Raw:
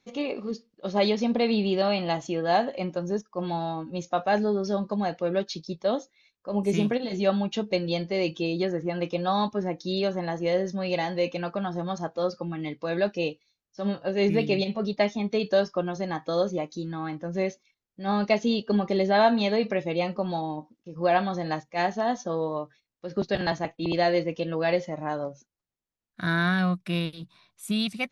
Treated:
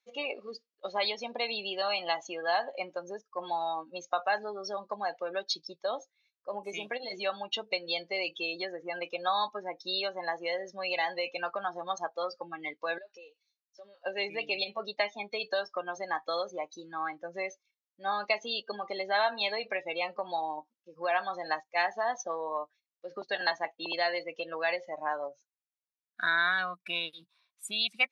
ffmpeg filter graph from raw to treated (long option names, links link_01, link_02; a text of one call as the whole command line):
ffmpeg -i in.wav -filter_complex "[0:a]asettb=1/sr,asplit=3[link_01][link_02][link_03];[link_01]atrim=end=12.984[link_04];[link_02]atrim=start=12.98:end=14.06,asetpts=PTS-STARTPTS,afade=type=in:duration=0.004:curve=qsin,afade=type=out:start_time=1.076:duration=0.004:curve=qsin,bass=frequency=250:gain=-11,treble=frequency=4000:gain=4,acompressor=threshold=-40dB:ratio=12:attack=3.2:release=140:knee=1:detection=peak[link_05];[link_03]atrim=start=14.056[link_06];[link_04][link_05]acrossfade=duration=0.004:curve1=hsin:curve2=qsin[link_07];[link_07][link_06]acrossfade=duration=0.004:curve1=qsin:curve2=hsin,afftdn=noise_reduction=19:noise_floor=-35,acompressor=threshold=-28dB:ratio=3,highpass=1000,volume=7.5dB" out.wav